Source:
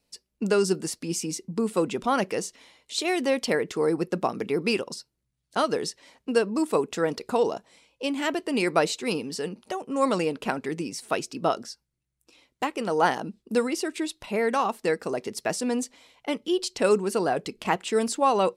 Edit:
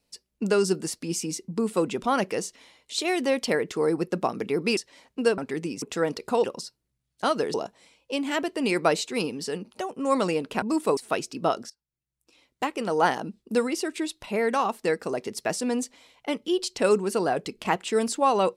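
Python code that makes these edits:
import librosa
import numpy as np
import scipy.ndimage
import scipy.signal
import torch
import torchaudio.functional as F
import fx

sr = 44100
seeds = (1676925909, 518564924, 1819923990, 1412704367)

y = fx.edit(x, sr, fx.move(start_s=4.77, length_s=1.1, to_s=7.45),
    fx.swap(start_s=6.48, length_s=0.35, other_s=10.53, other_length_s=0.44),
    fx.fade_in_from(start_s=11.7, length_s=0.94, floor_db=-22.5), tone=tone)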